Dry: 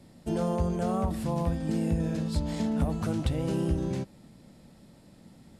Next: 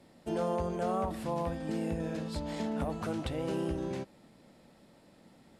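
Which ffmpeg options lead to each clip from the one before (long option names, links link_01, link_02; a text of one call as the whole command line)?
ffmpeg -i in.wav -af "bass=frequency=250:gain=-11,treble=frequency=4000:gain=-6" out.wav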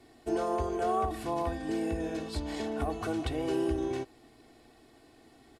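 ffmpeg -i in.wav -af "aecho=1:1:2.7:0.96" out.wav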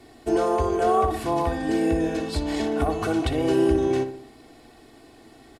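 ffmpeg -i in.wav -filter_complex "[0:a]asplit=2[link_01][link_02];[link_02]adelay=61,lowpass=frequency=2600:poles=1,volume=-10dB,asplit=2[link_03][link_04];[link_04]adelay=61,lowpass=frequency=2600:poles=1,volume=0.52,asplit=2[link_05][link_06];[link_06]adelay=61,lowpass=frequency=2600:poles=1,volume=0.52,asplit=2[link_07][link_08];[link_08]adelay=61,lowpass=frequency=2600:poles=1,volume=0.52,asplit=2[link_09][link_10];[link_10]adelay=61,lowpass=frequency=2600:poles=1,volume=0.52,asplit=2[link_11][link_12];[link_12]adelay=61,lowpass=frequency=2600:poles=1,volume=0.52[link_13];[link_01][link_03][link_05][link_07][link_09][link_11][link_13]amix=inputs=7:normalize=0,volume=8dB" out.wav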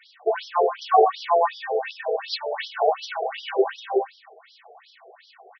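ffmpeg -i in.wav -af "afftfilt=real='re*between(b*sr/1024,530*pow(4300/530,0.5+0.5*sin(2*PI*2.7*pts/sr))/1.41,530*pow(4300/530,0.5+0.5*sin(2*PI*2.7*pts/sr))*1.41)':imag='im*between(b*sr/1024,530*pow(4300/530,0.5+0.5*sin(2*PI*2.7*pts/sr))/1.41,530*pow(4300/530,0.5+0.5*sin(2*PI*2.7*pts/sr))*1.41)':win_size=1024:overlap=0.75,volume=9dB" out.wav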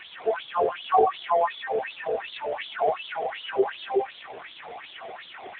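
ffmpeg -i in.wav -af "aeval=exprs='val(0)+0.5*0.0376*sgn(val(0))':channel_layout=same,volume=-3dB" -ar 8000 -c:a libopencore_amrnb -b:a 5900 out.amr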